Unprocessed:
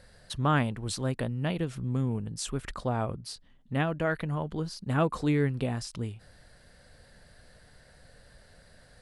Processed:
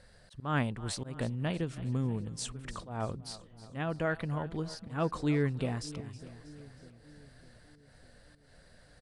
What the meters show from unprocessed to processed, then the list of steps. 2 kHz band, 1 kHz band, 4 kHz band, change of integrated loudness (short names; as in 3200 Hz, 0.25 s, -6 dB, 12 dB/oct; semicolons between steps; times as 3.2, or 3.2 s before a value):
-4.0 dB, -5.5 dB, -4.0 dB, -4.0 dB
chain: auto swell 0.186 s; downsampling 22050 Hz; split-band echo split 470 Hz, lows 0.602 s, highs 0.319 s, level -16 dB; gain -3 dB